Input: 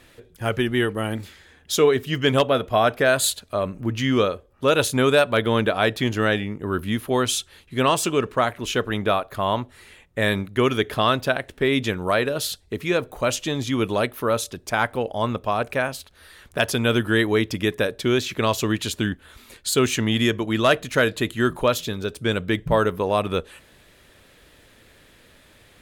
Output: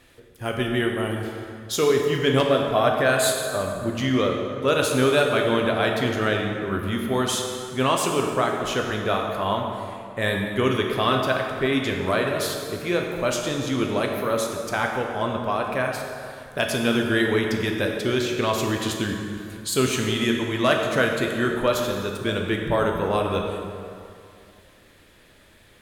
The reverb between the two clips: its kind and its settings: plate-style reverb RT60 2.5 s, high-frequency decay 0.6×, DRR 1 dB; trim -3.5 dB

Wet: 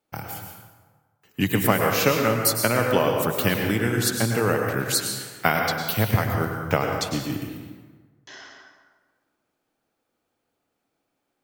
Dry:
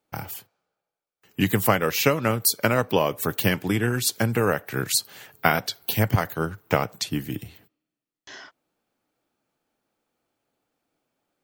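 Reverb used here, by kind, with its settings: plate-style reverb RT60 1.4 s, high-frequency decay 0.6×, pre-delay 90 ms, DRR 2 dB; trim -1 dB

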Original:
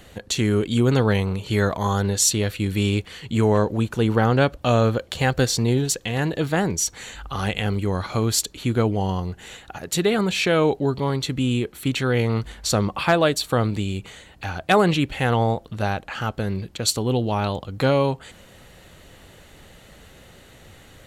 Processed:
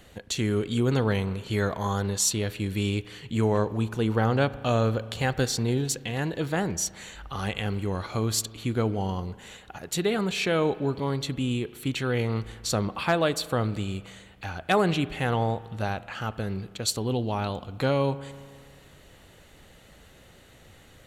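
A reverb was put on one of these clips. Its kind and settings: spring tank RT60 1.8 s, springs 36 ms, chirp 55 ms, DRR 16 dB; trim -5.5 dB

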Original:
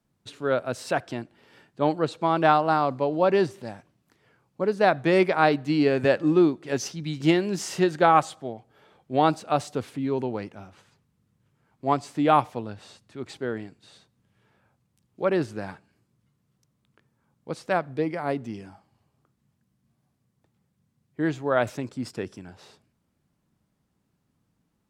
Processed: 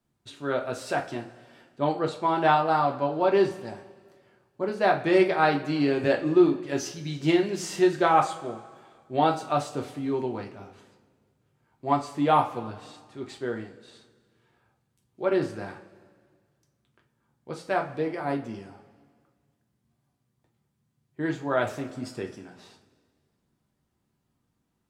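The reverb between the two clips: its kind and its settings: two-slope reverb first 0.29 s, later 1.8 s, from -18 dB, DRR 1 dB; trim -4 dB

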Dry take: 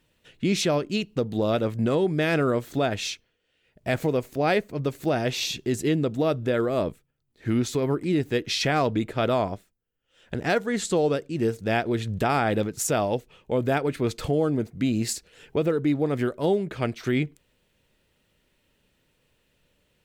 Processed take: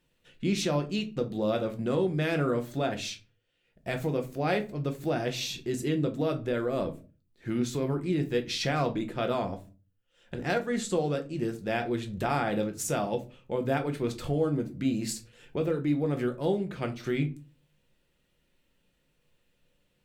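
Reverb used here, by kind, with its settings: simulated room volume 140 m³, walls furnished, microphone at 0.87 m; trim -6.5 dB

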